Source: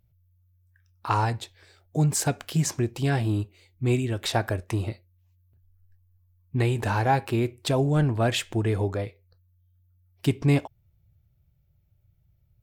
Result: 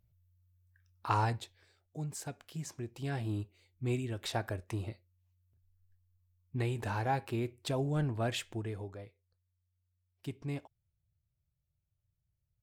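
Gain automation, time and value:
1.32 s -6 dB
1.98 s -17 dB
2.67 s -17 dB
3.33 s -10 dB
8.42 s -10 dB
8.88 s -17.5 dB

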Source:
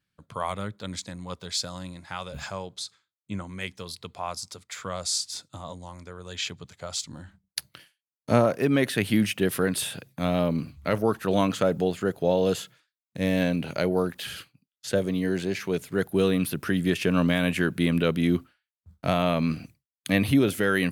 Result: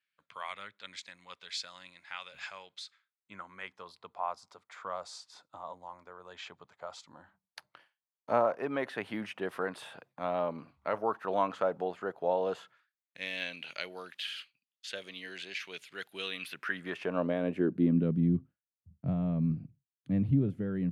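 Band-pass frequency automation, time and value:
band-pass, Q 1.7
2.73 s 2300 Hz
3.95 s 920 Hz
12.57 s 920 Hz
13.29 s 2900 Hz
16.39 s 2900 Hz
17.32 s 510 Hz
18.35 s 140 Hz

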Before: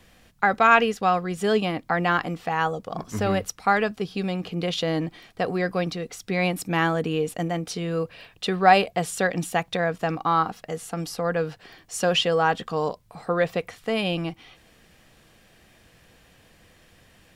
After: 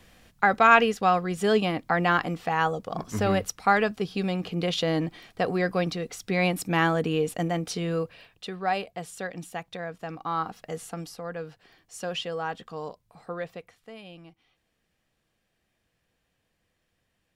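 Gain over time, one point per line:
7.91 s -0.5 dB
8.51 s -11 dB
10.04 s -11 dB
10.8 s -2.5 dB
11.21 s -10.5 dB
13.32 s -10.5 dB
14.01 s -20 dB

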